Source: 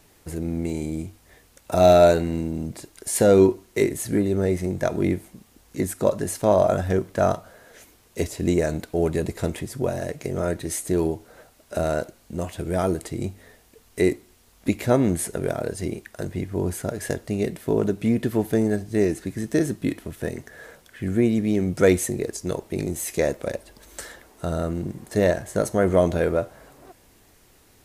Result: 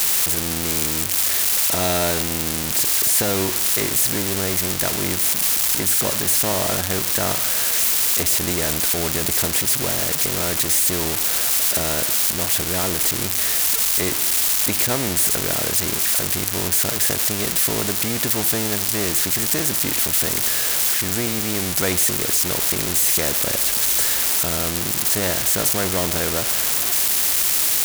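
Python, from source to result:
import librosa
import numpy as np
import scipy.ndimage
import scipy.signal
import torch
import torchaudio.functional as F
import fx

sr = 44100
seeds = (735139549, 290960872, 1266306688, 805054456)

y = x + 0.5 * 10.0 ** (-15.5 / 20.0) * np.diff(np.sign(x), prepend=np.sign(x[:1]))
y = fx.bass_treble(y, sr, bass_db=3, treble_db=0)
y = fx.spectral_comp(y, sr, ratio=2.0)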